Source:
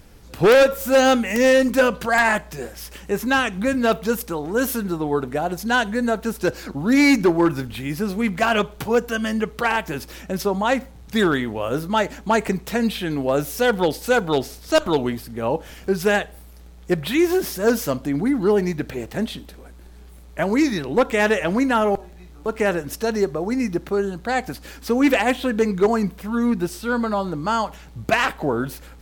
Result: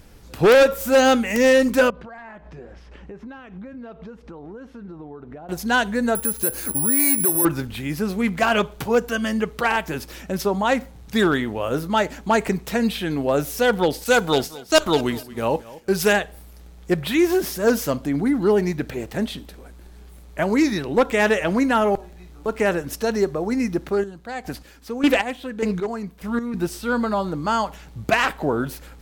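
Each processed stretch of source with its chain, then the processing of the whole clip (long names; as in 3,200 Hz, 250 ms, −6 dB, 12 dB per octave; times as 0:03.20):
0:01.90–0:05.49: downward compressor 10 to 1, threshold −33 dBFS + head-to-tape spacing loss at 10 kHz 34 dB
0:06.15–0:07.45: notch filter 670 Hz, Q 10 + downward compressor 4 to 1, threshold −24 dBFS + bad sample-rate conversion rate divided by 4×, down filtered, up zero stuff
0:14.04–0:16.13: downward expander −30 dBFS + high-shelf EQ 2,400 Hz +8 dB + repeating echo 223 ms, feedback 29%, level −19 dB
0:23.86–0:26.54: square-wave tremolo 1.7 Hz, depth 65%, duty 30% + highs frequency-modulated by the lows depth 0.16 ms
whole clip: no processing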